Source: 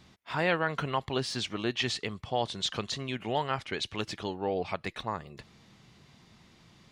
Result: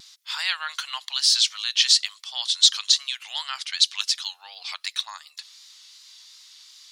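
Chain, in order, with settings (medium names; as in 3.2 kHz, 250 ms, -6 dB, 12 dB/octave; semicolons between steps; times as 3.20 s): Bessel high-pass 1.8 kHz, order 6; resonant high shelf 3.1 kHz +10 dB, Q 1.5; vibrato 2.7 Hz 51 cents; trim +7 dB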